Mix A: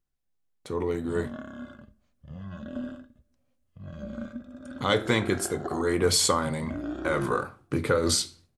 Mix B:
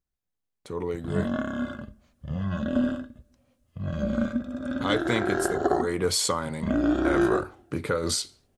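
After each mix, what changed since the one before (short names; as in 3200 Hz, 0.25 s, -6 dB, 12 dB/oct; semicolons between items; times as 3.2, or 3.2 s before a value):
speech: send off; background +10.5 dB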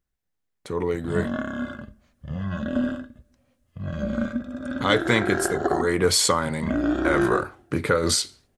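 speech +5.0 dB; master: add bell 1800 Hz +4 dB 0.66 oct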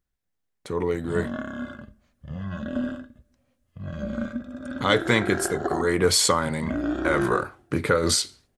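background -3.5 dB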